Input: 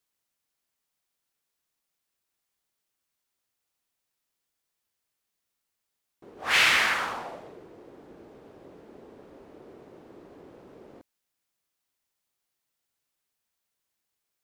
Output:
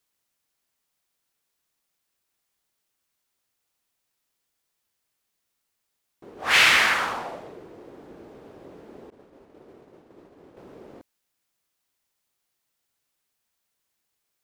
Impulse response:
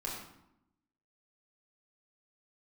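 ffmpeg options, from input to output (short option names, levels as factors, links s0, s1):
-filter_complex "[0:a]asettb=1/sr,asplit=3[s0][s1][s2];[s0]atrim=end=9.104[s3];[s1]atrim=start=9.1:end=10.57,asetpts=PTS-STARTPTS,afade=t=in:d=0.004:c=qsin,afade=t=out:st=1.466:d=0.004:c=qsin,agate=range=0.0224:threshold=0.00708:ratio=3:detection=peak[s4];[s2]atrim=start=10.566[s5];[s3][s4]acrossfade=d=0.004:c1=hsin:c2=qsin[s6];[s6][s5]acrossfade=d=0.004:c1=qsin:c2=hsin,volume=1.58"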